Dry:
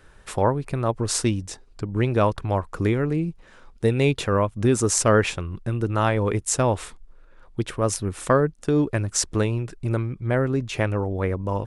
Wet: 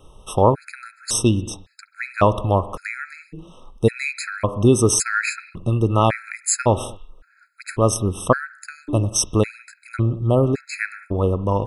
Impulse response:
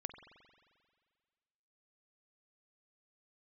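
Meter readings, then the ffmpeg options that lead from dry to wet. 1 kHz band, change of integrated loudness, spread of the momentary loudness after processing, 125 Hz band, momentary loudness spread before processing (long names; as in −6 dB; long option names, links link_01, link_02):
+3.5 dB, +3.0 dB, 16 LU, +2.0 dB, 9 LU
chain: -filter_complex "[0:a]asplit=2[link_01][link_02];[1:a]atrim=start_sample=2205,afade=type=out:start_time=0.27:duration=0.01,atrim=end_sample=12348,highshelf=frequency=9300:gain=6.5[link_03];[link_02][link_03]afir=irnorm=-1:irlink=0,volume=2.5dB[link_04];[link_01][link_04]amix=inputs=2:normalize=0,afftfilt=real='re*gt(sin(2*PI*0.9*pts/sr)*(1-2*mod(floor(b*sr/1024/1300),2)),0)':imag='im*gt(sin(2*PI*0.9*pts/sr)*(1-2*mod(floor(b*sr/1024/1300),2)),0)':win_size=1024:overlap=0.75"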